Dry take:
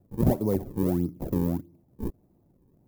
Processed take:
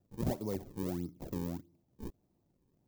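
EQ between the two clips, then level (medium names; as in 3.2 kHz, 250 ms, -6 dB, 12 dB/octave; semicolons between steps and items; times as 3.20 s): distance through air 140 m; pre-emphasis filter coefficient 0.9; treble shelf 11 kHz +12 dB; +8.0 dB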